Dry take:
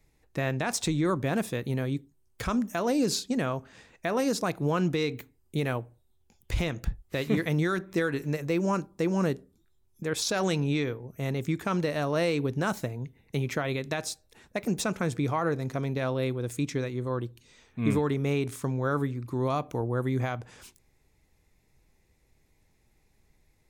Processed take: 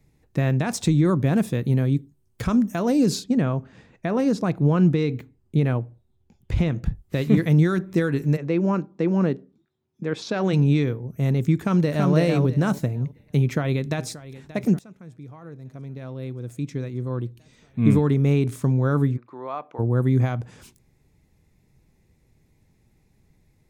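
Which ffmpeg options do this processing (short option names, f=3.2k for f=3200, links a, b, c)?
-filter_complex "[0:a]asettb=1/sr,asplit=3[a][b][c];[a]atrim=end=3.244[d];[b]atrim=start=3.24:end=6.86,asetpts=PTS-STARTPTS,afade=t=in:d=0.004:c=qsin,afade=t=out:st=3.616:d=0.004:c=qsin,aemphasis=mode=reproduction:type=50kf[e];[c]atrim=start=6.856[f];[d][e]acrossfade=d=0.004:c1=hsin:c2=qsin[g];[g][f]acrossfade=d=0.004:c1=qsin:c2=hsin,asplit=3[h][i][j];[h]afade=t=out:st=8.36:d=0.02[k];[i]highpass=200,lowpass=3.6k,afade=t=in:st=8.36:d=0.02,afade=t=out:st=10.52:d=0.02[l];[j]afade=t=in:st=10.52:d=0.02[m];[k][l][m]amix=inputs=3:normalize=0,asplit=2[n][o];[o]afade=t=in:st=11.58:d=0.01,afade=t=out:st=12.12:d=0.01,aecho=0:1:330|660|990|1320:0.749894|0.187474|0.0468684|0.0117171[p];[n][p]amix=inputs=2:normalize=0,asplit=2[q][r];[r]afade=t=in:st=13.4:d=0.01,afade=t=out:st=14.07:d=0.01,aecho=0:1:580|1160|1740|2320|2900|3480|4060|4640:0.141254|0.0988776|0.0692143|0.04845|0.033915|0.0237405|0.0166184|0.0116329[s];[q][s]amix=inputs=2:normalize=0,asplit=3[t][u][v];[t]afade=t=out:st=19.16:d=0.02[w];[u]highpass=740,lowpass=2.1k,afade=t=in:st=19.16:d=0.02,afade=t=out:st=19.78:d=0.02[x];[v]afade=t=in:st=19.78:d=0.02[y];[w][x][y]amix=inputs=3:normalize=0,asplit=2[z][aa];[z]atrim=end=14.79,asetpts=PTS-STARTPTS,afade=t=out:st=14.786:d=0.004:c=hsin:silence=0.0668344[ab];[aa]atrim=start=14.79,asetpts=PTS-STARTPTS,afade=t=in:d=3.07:c=qua:silence=0.0668344[ac];[ab][ac]concat=n=2:v=0:a=1,equalizer=f=150:w=0.54:g=11"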